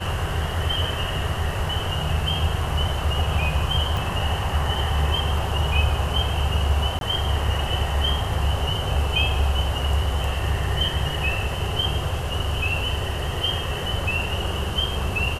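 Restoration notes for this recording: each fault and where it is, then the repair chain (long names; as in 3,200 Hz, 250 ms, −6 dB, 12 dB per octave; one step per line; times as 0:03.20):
0:03.97: click
0:06.99–0:07.01: drop-out 22 ms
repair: click removal
repair the gap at 0:06.99, 22 ms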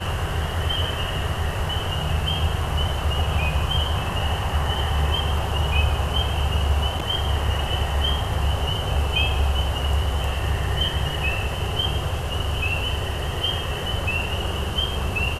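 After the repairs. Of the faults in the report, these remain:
none of them is left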